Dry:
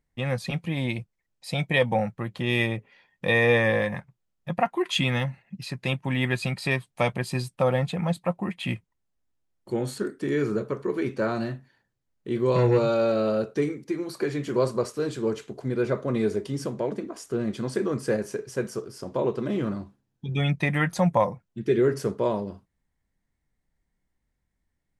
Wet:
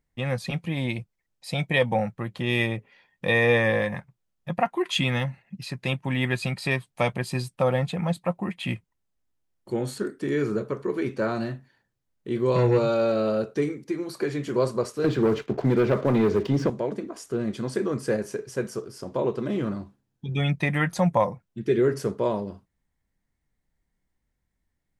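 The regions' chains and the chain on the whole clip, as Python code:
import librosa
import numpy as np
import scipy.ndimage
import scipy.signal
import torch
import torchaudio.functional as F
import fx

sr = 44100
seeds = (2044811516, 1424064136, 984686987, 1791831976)

y = fx.chain(x, sr, fx.air_absorb(metres=170.0),
    fx.leveller(passes=2),
    fx.band_squash(depth_pct=70), at=(15.04, 16.7))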